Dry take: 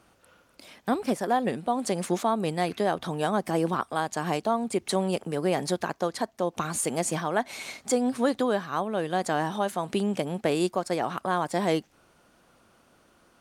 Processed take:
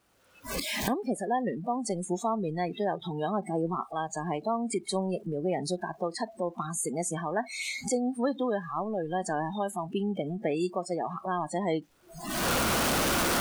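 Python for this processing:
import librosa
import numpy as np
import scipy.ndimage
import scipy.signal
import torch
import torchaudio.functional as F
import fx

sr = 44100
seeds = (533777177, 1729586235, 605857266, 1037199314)

y = x + 0.5 * 10.0 ** (-35.0 / 20.0) * np.sign(x)
y = fx.recorder_agc(y, sr, target_db=-20.5, rise_db_per_s=26.0, max_gain_db=30)
y = fx.noise_reduce_blind(y, sr, reduce_db=26)
y = y * 10.0 ** (-4.5 / 20.0)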